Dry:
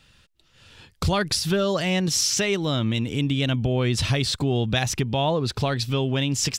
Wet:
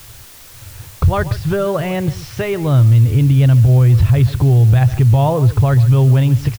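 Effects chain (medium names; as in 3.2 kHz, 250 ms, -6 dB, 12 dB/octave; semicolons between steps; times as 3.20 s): low-pass 1.5 kHz 12 dB/octave; resonant low shelf 150 Hz +9 dB, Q 3; on a send: delay 141 ms -16 dB; on the sum: peak limiter -12 dBFS, peak gain reduction 9.5 dB; added noise white -47 dBFS; trim +7 dB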